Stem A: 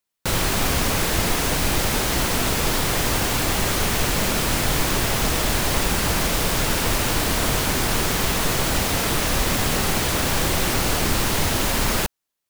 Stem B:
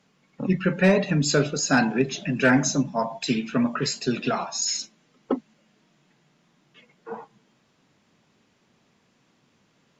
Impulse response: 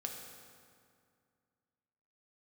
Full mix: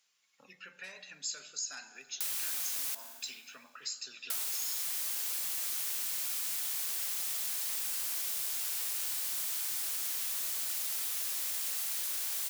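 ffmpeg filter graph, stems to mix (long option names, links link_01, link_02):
-filter_complex "[0:a]highpass=49,equalizer=frequency=82:width_type=o:width=3:gain=-2.5,adelay=1950,volume=-8dB,asplit=3[link_01][link_02][link_03];[link_01]atrim=end=2.95,asetpts=PTS-STARTPTS,afade=type=out:start_time=2.946:duration=0.004:curve=hsin[link_04];[link_02]atrim=start=2.95:end=4.3,asetpts=PTS-STARTPTS,volume=0[link_05];[link_03]atrim=start=4.3,asetpts=PTS-STARTPTS,afade=type=in:duration=0.004:curve=hsin[link_06];[link_04][link_05][link_06]concat=n=3:v=0:a=1,asplit=2[link_07][link_08];[link_08]volume=-4.5dB[link_09];[1:a]equalizer=frequency=200:width_type=o:width=2.8:gain=-8.5,acompressor=threshold=-36dB:ratio=2.5,volume=-1.5dB,asplit=2[link_10][link_11];[link_11]volume=-6dB[link_12];[2:a]atrim=start_sample=2205[link_13];[link_09][link_12]amix=inputs=2:normalize=0[link_14];[link_14][link_13]afir=irnorm=-1:irlink=0[link_15];[link_07][link_10][link_15]amix=inputs=3:normalize=0,aderivative,acompressor=threshold=-32dB:ratio=6"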